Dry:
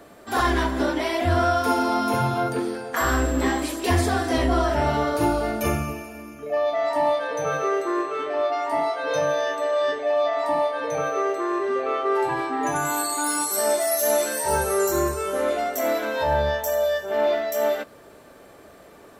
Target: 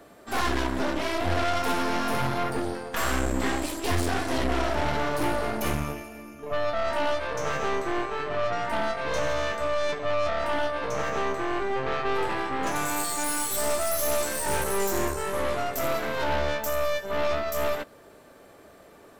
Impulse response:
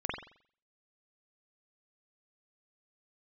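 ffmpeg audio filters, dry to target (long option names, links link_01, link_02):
-af "aeval=exprs='0.335*(cos(1*acos(clip(val(0)/0.335,-1,1)))-cos(1*PI/2))+0.0841*(cos(6*acos(clip(val(0)/0.335,-1,1)))-cos(6*PI/2))':channel_layout=same,asoftclip=type=tanh:threshold=-13.5dB,volume=-3.5dB"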